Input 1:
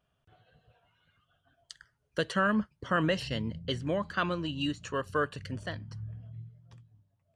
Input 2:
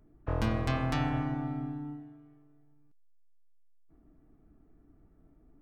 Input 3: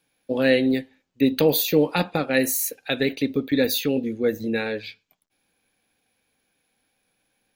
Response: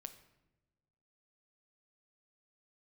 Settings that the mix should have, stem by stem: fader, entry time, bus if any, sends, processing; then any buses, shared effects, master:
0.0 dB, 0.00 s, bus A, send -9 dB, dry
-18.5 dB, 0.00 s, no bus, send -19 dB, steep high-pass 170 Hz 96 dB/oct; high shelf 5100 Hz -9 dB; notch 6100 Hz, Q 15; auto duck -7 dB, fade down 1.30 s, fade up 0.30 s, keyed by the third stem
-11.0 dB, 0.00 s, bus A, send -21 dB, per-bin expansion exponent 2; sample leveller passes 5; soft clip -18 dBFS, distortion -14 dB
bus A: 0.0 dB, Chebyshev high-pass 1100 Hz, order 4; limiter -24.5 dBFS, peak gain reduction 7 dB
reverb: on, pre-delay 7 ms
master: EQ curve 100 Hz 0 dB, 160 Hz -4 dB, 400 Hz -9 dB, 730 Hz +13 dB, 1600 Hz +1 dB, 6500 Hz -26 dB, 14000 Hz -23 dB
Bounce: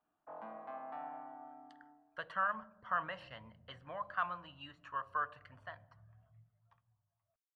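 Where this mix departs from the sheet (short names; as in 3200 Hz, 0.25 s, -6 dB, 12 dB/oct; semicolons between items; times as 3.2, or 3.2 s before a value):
stem 1 0.0 dB -> -6.0 dB; stem 3: muted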